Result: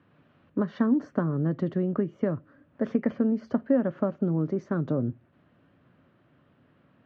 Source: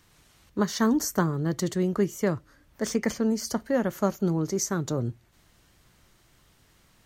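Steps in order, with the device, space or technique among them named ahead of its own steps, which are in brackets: bass amplifier (compression, threshold -25 dBFS, peak gain reduction 7.5 dB; cabinet simulation 90–2400 Hz, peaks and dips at 160 Hz +4 dB, 260 Hz +10 dB, 570 Hz +6 dB, 880 Hz -4 dB, 2.1 kHz -8 dB)

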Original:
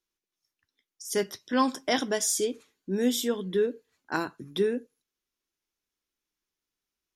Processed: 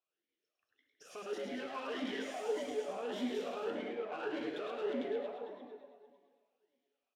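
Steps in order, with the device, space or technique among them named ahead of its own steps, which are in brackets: backward echo that repeats 113 ms, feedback 66%, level -1.5 dB; 3.70–4.23 s: low-pass 1.9 kHz; talk box (valve stage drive 40 dB, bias 0.65; talking filter a-i 1.7 Hz); frequency-shifting echo 105 ms, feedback 42%, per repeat +140 Hz, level -6.5 dB; gated-style reverb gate 350 ms falling, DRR 6.5 dB; trim +11.5 dB

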